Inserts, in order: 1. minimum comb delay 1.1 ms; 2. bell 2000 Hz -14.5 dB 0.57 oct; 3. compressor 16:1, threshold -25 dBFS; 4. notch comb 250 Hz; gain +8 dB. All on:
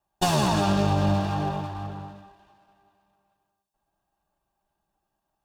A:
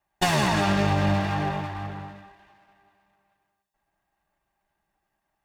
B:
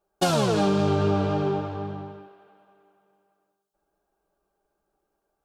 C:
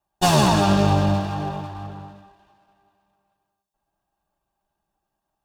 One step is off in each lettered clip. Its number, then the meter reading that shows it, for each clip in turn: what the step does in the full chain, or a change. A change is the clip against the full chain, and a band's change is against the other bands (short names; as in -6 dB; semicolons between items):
2, 2 kHz band +7.5 dB; 1, 500 Hz band +6.0 dB; 3, mean gain reduction 2.0 dB